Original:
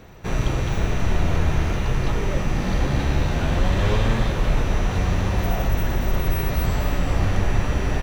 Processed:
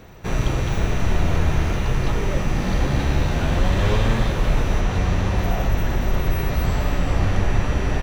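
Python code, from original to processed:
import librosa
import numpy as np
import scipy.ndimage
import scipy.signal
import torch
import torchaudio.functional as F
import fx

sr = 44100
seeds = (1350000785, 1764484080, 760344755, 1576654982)

y = fx.high_shelf(x, sr, hz=9800.0, db=fx.steps((0.0, 2.0), (4.8, -5.5)))
y = y * librosa.db_to_amplitude(1.0)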